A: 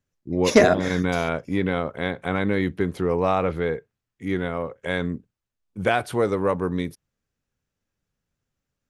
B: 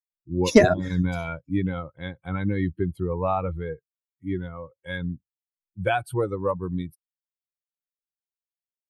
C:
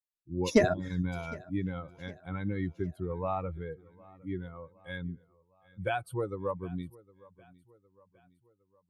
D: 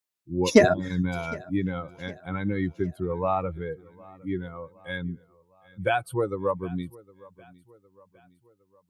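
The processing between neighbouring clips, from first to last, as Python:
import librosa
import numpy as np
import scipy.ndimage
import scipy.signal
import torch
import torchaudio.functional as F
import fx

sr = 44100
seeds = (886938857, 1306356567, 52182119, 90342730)

y1 = fx.bin_expand(x, sr, power=2.0)
y1 = fx.low_shelf(y1, sr, hz=210.0, db=9.0)
y2 = fx.echo_feedback(y1, sr, ms=760, feedback_pct=49, wet_db=-23)
y2 = y2 * librosa.db_to_amplitude(-8.0)
y3 = fx.highpass(y2, sr, hz=130.0, slope=6)
y3 = y3 * librosa.db_to_amplitude(7.5)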